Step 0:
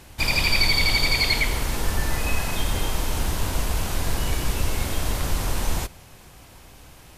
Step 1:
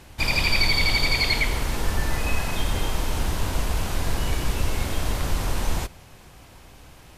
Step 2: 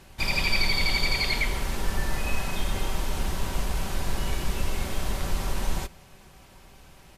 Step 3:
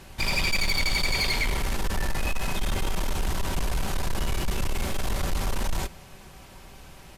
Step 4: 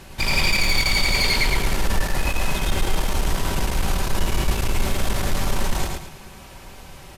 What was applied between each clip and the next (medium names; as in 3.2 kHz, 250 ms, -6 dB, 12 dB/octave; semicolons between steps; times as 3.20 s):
treble shelf 6.6 kHz -5.5 dB
comb 5.2 ms, depth 37%; trim -4 dB
saturation -24.5 dBFS, distortion -11 dB; trim +4.5 dB
feedback delay 110 ms, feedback 34%, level -3.5 dB; trim +4 dB